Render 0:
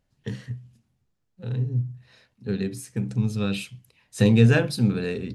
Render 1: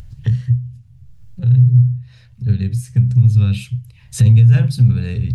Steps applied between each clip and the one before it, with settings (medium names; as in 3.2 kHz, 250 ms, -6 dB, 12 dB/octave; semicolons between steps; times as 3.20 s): FFT filter 120 Hz 0 dB, 280 Hz -29 dB, 2.8 kHz -20 dB; in parallel at -1 dB: upward compressor, threshold -29 dBFS; on the sum: loudness maximiser +16.5 dB; trim -3 dB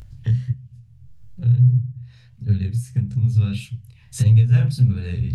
chorus 1.6 Hz, delay 19.5 ms, depth 6.9 ms; trim -1.5 dB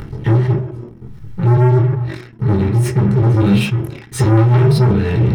waveshaping leveller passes 5; reverberation RT60 0.35 s, pre-delay 3 ms, DRR 1 dB; decay stretcher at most 84 dB/s; trim -11 dB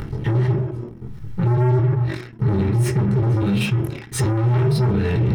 peak limiter -12.5 dBFS, peak gain reduction 11 dB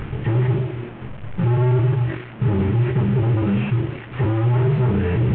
one-bit delta coder 16 kbps, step -31.5 dBFS